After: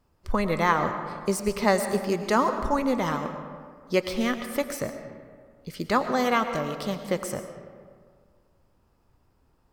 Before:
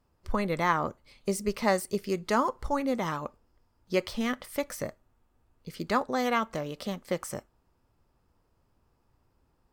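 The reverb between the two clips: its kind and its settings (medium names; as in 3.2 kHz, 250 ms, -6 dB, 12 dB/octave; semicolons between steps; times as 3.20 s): algorithmic reverb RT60 1.9 s, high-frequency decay 0.5×, pre-delay 70 ms, DRR 8 dB; trim +3.5 dB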